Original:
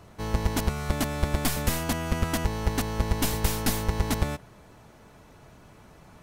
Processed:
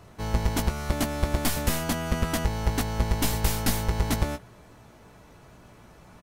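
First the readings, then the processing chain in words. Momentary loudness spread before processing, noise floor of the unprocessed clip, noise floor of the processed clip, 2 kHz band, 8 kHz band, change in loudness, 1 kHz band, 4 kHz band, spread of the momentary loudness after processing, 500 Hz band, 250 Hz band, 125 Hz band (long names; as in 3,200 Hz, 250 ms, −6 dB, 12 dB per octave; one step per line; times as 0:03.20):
3 LU, −53 dBFS, −52 dBFS, 0.0 dB, +0.5 dB, +0.5 dB, +0.5 dB, +0.5 dB, 3 LU, 0.0 dB, +0.5 dB, +0.5 dB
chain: double-tracking delay 17 ms −8.5 dB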